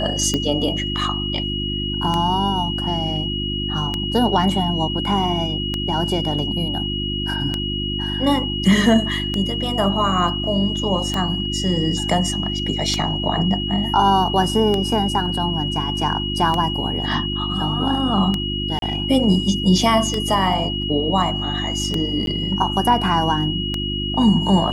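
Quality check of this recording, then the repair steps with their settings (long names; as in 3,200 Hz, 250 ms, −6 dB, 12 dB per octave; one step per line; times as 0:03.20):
mains hum 50 Hz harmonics 7 −26 dBFS
scratch tick 33 1/3 rpm −8 dBFS
whistle 2,900 Hz −25 dBFS
0:18.79–0:18.82: drop-out 32 ms
0:22.26–0:22.27: drop-out 12 ms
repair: click removal
hum removal 50 Hz, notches 7
notch filter 2,900 Hz, Q 30
repair the gap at 0:18.79, 32 ms
repair the gap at 0:22.26, 12 ms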